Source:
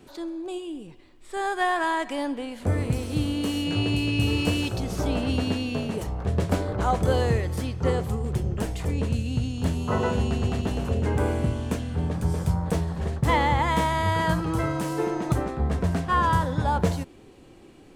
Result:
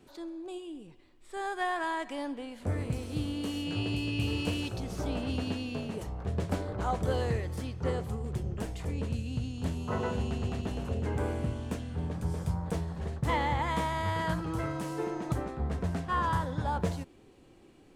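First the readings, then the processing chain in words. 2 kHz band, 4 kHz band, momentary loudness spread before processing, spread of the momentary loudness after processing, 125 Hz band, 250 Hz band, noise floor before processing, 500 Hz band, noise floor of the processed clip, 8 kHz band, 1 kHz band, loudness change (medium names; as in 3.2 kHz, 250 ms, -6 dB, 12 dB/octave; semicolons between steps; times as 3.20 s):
-7.5 dB, -7.5 dB, 7 LU, 7 LU, -7.5 dB, -7.5 dB, -50 dBFS, -7.5 dB, -57 dBFS, -8.5 dB, -7.5 dB, -7.5 dB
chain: loudspeaker Doppler distortion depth 0.18 ms; trim -7.5 dB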